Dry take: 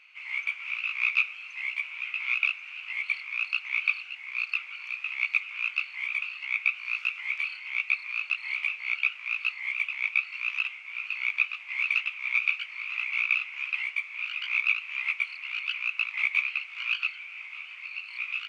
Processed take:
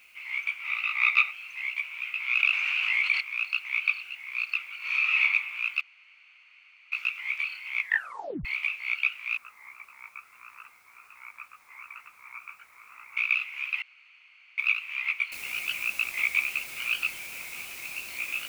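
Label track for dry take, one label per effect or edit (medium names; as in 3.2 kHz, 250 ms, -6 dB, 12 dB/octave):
0.630000	1.300000	small resonant body resonances 850/1200/2000/3700 Hz, height 11 dB -> 14 dB, ringing for 20 ms
2.350000	3.210000	level flattener amount 70%
4.790000	5.210000	reverb throw, RT60 1.2 s, DRR -10.5 dB
5.810000	6.920000	room tone
7.770000	7.770000	tape stop 0.68 s
9.370000	13.170000	low-pass 1.4 kHz 24 dB/octave
13.820000	14.580000	room tone
15.320000	15.320000	noise floor step -66 dB -44 dB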